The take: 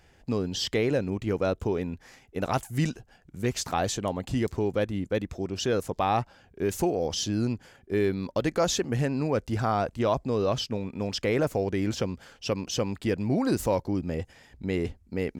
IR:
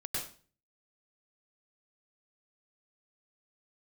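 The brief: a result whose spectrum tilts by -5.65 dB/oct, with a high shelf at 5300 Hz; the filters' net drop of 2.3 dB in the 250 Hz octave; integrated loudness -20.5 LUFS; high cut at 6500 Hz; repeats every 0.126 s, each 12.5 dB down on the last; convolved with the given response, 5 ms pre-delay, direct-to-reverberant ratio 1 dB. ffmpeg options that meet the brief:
-filter_complex "[0:a]lowpass=6.5k,equalizer=f=250:t=o:g=-3,highshelf=f=5.3k:g=-3.5,aecho=1:1:126|252|378:0.237|0.0569|0.0137,asplit=2[a][b];[1:a]atrim=start_sample=2205,adelay=5[c];[b][c]afir=irnorm=-1:irlink=0,volume=-4dB[d];[a][d]amix=inputs=2:normalize=0,volume=6dB"

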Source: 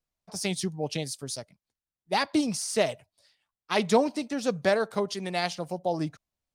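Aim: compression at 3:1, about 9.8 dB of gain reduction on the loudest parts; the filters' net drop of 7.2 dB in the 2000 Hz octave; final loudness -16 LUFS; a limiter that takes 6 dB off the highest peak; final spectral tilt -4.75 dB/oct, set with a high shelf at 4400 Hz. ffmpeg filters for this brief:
-af "equalizer=f=2k:t=o:g=-7.5,highshelf=f=4.4k:g=-7.5,acompressor=threshold=-30dB:ratio=3,volume=20.5dB,alimiter=limit=-4.5dB:level=0:latency=1"

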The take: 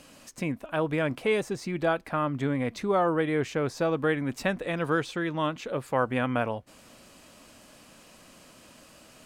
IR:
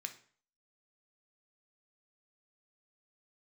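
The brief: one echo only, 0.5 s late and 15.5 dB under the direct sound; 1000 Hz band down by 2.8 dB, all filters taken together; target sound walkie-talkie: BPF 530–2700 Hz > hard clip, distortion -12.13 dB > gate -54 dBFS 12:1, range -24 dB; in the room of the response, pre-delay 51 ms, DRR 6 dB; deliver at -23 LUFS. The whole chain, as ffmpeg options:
-filter_complex "[0:a]equalizer=f=1k:t=o:g=-3,aecho=1:1:500:0.168,asplit=2[a][b];[1:a]atrim=start_sample=2205,adelay=51[c];[b][c]afir=irnorm=-1:irlink=0,volume=-4dB[d];[a][d]amix=inputs=2:normalize=0,highpass=530,lowpass=2.7k,asoftclip=type=hard:threshold=-25.5dB,agate=range=-24dB:threshold=-54dB:ratio=12,volume=11dB"

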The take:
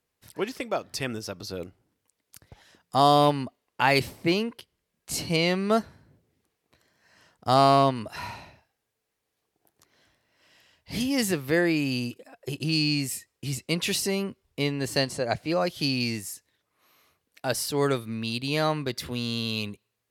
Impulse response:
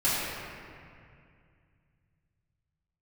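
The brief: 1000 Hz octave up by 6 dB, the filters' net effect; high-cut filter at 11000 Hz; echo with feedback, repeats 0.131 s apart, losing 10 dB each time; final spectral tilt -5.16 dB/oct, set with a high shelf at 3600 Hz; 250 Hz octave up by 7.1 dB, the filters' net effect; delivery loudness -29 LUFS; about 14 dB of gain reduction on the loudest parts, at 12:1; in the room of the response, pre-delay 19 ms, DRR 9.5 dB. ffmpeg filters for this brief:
-filter_complex "[0:a]lowpass=11k,equalizer=f=250:t=o:g=8.5,equalizer=f=1k:t=o:g=8,highshelf=f=3.6k:g=-6,acompressor=threshold=-23dB:ratio=12,aecho=1:1:131|262|393|524:0.316|0.101|0.0324|0.0104,asplit=2[a][b];[1:a]atrim=start_sample=2205,adelay=19[c];[b][c]afir=irnorm=-1:irlink=0,volume=-23dB[d];[a][d]amix=inputs=2:normalize=0"

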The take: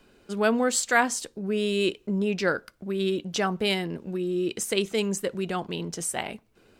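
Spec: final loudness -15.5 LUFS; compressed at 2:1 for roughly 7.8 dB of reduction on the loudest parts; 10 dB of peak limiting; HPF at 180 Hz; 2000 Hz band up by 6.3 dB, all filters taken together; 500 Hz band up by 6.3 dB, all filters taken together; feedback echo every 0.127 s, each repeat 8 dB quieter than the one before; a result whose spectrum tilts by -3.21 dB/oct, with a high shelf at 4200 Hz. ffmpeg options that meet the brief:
-af "highpass=180,equalizer=f=500:t=o:g=8,equalizer=f=2k:t=o:g=7,highshelf=f=4.2k:g=4,acompressor=threshold=-24dB:ratio=2,alimiter=limit=-17.5dB:level=0:latency=1,aecho=1:1:127|254|381|508|635:0.398|0.159|0.0637|0.0255|0.0102,volume=12dB"

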